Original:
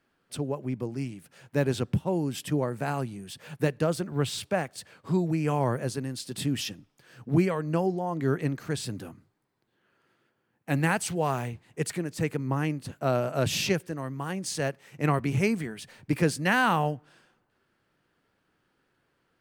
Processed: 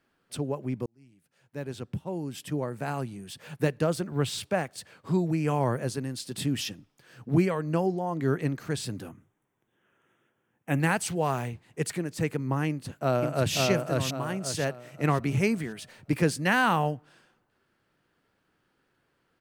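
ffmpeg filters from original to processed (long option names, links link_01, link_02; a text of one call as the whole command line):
ffmpeg -i in.wav -filter_complex "[0:a]asettb=1/sr,asplit=3[link_01][link_02][link_03];[link_01]atrim=end=9.094[link_04];[link_02]atrim=start=9.09:end=10.8,asetpts=PTS-STARTPTS,afade=type=in:duration=0.004:curve=qsin,afade=type=out:start_time=1.706:duration=0.004:curve=qsin,asuperstop=centerf=4500:order=8:qfactor=2.3[link_05];[link_03]atrim=start=10.796[link_06];[link_04][link_05]acrossfade=duration=0.004:curve1=hsin:curve2=qsin[link_07];[link_07][link_06]acrossfade=duration=0.004:curve1=qsin:curve2=hsin,asplit=2[link_08][link_09];[link_09]afade=type=in:start_time=12.68:duration=0.01,afade=type=out:start_time=13.56:duration=0.01,aecho=0:1:540|1080|1620|2160|2700:0.794328|0.278015|0.0973052|0.0340568|0.0119199[link_10];[link_08][link_10]amix=inputs=2:normalize=0,asplit=2[link_11][link_12];[link_11]atrim=end=0.86,asetpts=PTS-STARTPTS,afade=type=out:start_time=0.856:duration=0.004:curve=hsin[link_13];[link_12]atrim=start=0.86,asetpts=PTS-STARTPTS,afade=type=in:duration=2.58[link_14];[link_13][link_14]concat=n=2:v=0:a=1" out.wav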